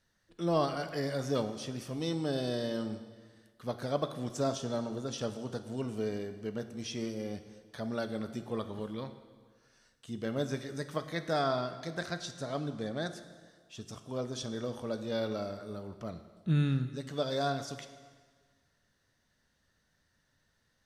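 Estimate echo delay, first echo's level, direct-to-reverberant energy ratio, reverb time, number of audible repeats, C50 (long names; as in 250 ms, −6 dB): no echo audible, no echo audible, 9.0 dB, 1.6 s, no echo audible, 11.0 dB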